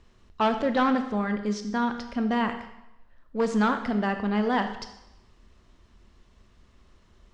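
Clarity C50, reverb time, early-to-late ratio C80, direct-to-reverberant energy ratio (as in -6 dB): 9.0 dB, 0.90 s, 11.5 dB, 7.0 dB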